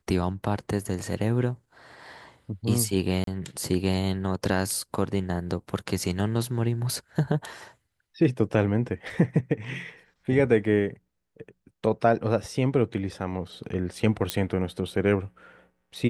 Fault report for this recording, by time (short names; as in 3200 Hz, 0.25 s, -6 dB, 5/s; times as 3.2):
3.24–3.27 gap 33 ms
14.3 pop -8 dBFS